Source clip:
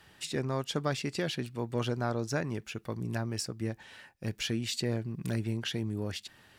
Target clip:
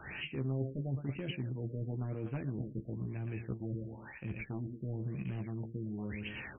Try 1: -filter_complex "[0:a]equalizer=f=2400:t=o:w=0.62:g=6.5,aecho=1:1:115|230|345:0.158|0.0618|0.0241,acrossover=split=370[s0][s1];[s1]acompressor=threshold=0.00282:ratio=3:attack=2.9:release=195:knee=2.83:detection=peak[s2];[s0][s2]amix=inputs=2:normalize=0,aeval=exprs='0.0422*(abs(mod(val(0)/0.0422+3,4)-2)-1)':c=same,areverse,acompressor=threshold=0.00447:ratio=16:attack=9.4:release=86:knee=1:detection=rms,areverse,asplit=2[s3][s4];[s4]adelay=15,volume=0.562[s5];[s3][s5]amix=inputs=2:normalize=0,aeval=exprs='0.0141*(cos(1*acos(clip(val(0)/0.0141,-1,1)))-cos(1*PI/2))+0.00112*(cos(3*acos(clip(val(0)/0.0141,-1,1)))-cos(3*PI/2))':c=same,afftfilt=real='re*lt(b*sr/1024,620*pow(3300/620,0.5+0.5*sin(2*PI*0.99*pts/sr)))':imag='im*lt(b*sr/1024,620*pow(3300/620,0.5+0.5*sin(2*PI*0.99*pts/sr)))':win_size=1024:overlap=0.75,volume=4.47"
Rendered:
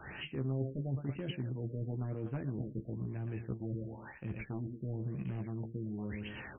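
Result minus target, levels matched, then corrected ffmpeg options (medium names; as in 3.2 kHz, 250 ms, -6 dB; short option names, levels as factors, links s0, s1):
2 kHz band -3.0 dB
-filter_complex "[0:a]equalizer=f=2400:t=o:w=0.62:g=17,aecho=1:1:115|230|345:0.158|0.0618|0.0241,acrossover=split=370[s0][s1];[s1]acompressor=threshold=0.00282:ratio=3:attack=2.9:release=195:knee=2.83:detection=peak[s2];[s0][s2]amix=inputs=2:normalize=0,aeval=exprs='0.0422*(abs(mod(val(0)/0.0422+3,4)-2)-1)':c=same,areverse,acompressor=threshold=0.00447:ratio=16:attack=9.4:release=86:knee=1:detection=rms,areverse,asplit=2[s3][s4];[s4]adelay=15,volume=0.562[s5];[s3][s5]amix=inputs=2:normalize=0,aeval=exprs='0.0141*(cos(1*acos(clip(val(0)/0.0141,-1,1)))-cos(1*PI/2))+0.00112*(cos(3*acos(clip(val(0)/0.0141,-1,1)))-cos(3*PI/2))':c=same,afftfilt=real='re*lt(b*sr/1024,620*pow(3300/620,0.5+0.5*sin(2*PI*0.99*pts/sr)))':imag='im*lt(b*sr/1024,620*pow(3300/620,0.5+0.5*sin(2*PI*0.99*pts/sr)))':win_size=1024:overlap=0.75,volume=4.47"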